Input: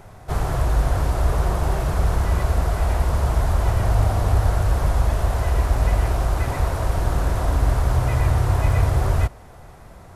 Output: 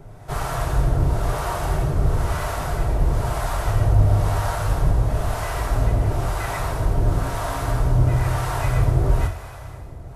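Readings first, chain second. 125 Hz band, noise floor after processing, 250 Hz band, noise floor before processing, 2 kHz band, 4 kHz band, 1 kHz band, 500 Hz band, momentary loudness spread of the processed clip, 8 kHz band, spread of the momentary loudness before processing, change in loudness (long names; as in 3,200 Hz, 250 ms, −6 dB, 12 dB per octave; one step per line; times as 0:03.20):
−0.5 dB, −38 dBFS, +1.0 dB, −43 dBFS, +0.5 dB, +0.5 dB, 0.0 dB, 0.0 dB, 7 LU, +0.5 dB, 3 LU, −1.0 dB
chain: coupled-rooms reverb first 0.31 s, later 4.3 s, from −18 dB, DRR 2 dB
two-band tremolo in antiphase 1 Hz, depth 70%, crossover 580 Hz
level +1.5 dB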